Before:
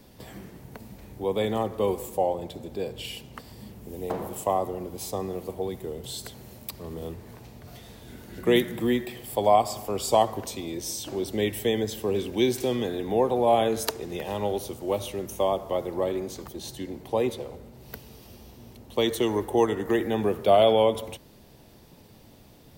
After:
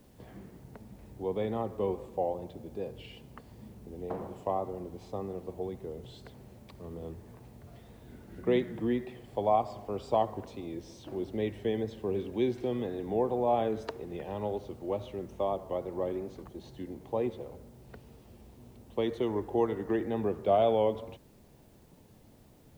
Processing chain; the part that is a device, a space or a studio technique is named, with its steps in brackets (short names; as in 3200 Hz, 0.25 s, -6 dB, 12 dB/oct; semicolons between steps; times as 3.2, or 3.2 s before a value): cassette deck with a dirty head (tape spacing loss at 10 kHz 31 dB; wow and flutter; white noise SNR 36 dB); gain -4.5 dB